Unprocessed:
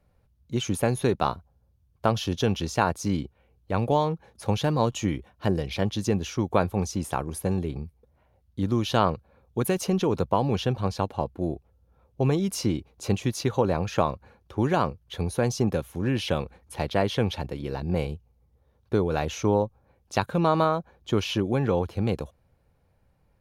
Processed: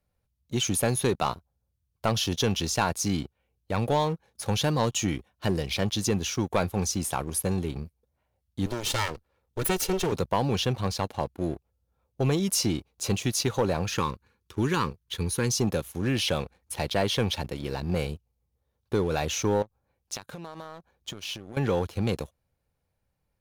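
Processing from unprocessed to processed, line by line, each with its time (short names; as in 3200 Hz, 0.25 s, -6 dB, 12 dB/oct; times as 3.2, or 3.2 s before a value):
8.66–10.12 minimum comb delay 2.2 ms
13.95–15.54 Butterworth band-stop 660 Hz, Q 1.6
19.62–21.57 compressor 12:1, threshold -35 dBFS
whole clip: high shelf 2700 Hz +10 dB; sample leveller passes 2; gain -8.5 dB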